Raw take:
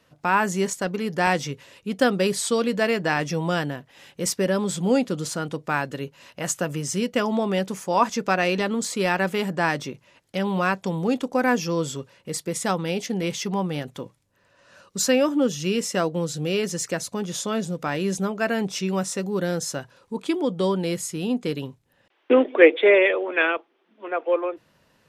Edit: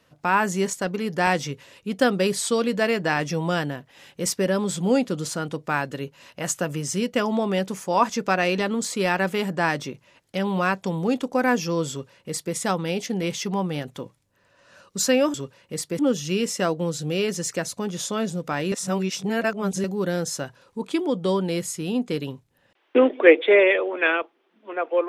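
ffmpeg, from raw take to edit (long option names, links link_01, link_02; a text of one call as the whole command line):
ffmpeg -i in.wav -filter_complex "[0:a]asplit=5[link_01][link_02][link_03][link_04][link_05];[link_01]atrim=end=15.342[link_06];[link_02]atrim=start=11.898:end=12.552[link_07];[link_03]atrim=start=15.338:end=18.072[link_08];[link_04]atrim=start=18.068:end=19.192,asetpts=PTS-STARTPTS,areverse[link_09];[link_05]atrim=start=19.188[link_10];[link_06][link_07]acrossfade=duration=0.004:curve1=hsin:curve2=hsin[link_11];[link_11][link_08]acrossfade=duration=0.004:curve1=hsin:curve2=hsin[link_12];[link_12][link_09]acrossfade=duration=0.004:curve1=hsin:curve2=hsin[link_13];[link_13][link_10]acrossfade=duration=0.004:curve1=hsin:curve2=hsin" out.wav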